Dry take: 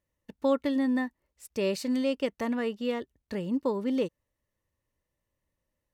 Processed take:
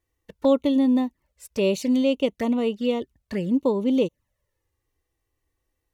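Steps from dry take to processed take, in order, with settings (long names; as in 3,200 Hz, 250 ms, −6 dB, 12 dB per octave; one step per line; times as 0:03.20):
flanger swept by the level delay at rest 2.6 ms, full sweep at −27.5 dBFS
level +7.5 dB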